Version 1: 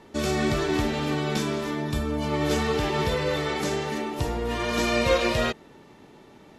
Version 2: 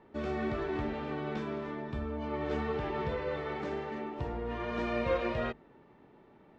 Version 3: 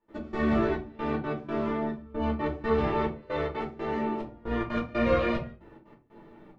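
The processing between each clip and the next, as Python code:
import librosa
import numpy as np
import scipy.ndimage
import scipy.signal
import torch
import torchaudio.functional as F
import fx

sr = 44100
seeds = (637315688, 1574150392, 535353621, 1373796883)

y1 = scipy.signal.sosfilt(scipy.signal.butter(2, 2000.0, 'lowpass', fs=sr, output='sos'), x)
y1 = fx.hum_notches(y1, sr, base_hz=50, count=6)
y1 = F.gain(torch.from_numpy(y1), -8.0).numpy()
y2 = fx.step_gate(y1, sr, bpm=182, pattern='.x..xxxxx...xx', floor_db=-24.0, edge_ms=4.5)
y2 = fx.room_shoebox(y2, sr, seeds[0], volume_m3=120.0, walls='furnished', distance_m=2.6)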